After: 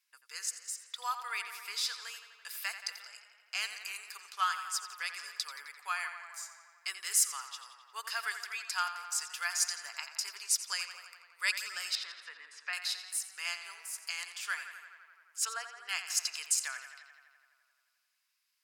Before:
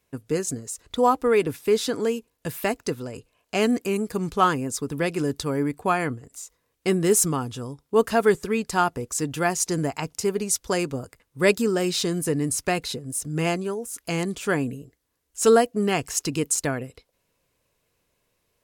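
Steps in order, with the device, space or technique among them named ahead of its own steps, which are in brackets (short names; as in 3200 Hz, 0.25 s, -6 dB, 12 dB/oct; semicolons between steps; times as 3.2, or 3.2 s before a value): 11.95–12.73 Chebyshev low-pass 2100 Hz, order 2; 15.45–15.89 LPF 1400 Hz 6 dB/oct; headphones lying on a table (HPF 1300 Hz 24 dB/oct; bell 4900 Hz +9 dB 0.28 oct); tape echo 86 ms, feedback 78%, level -9.5 dB, low-pass 5200 Hz; gain -6 dB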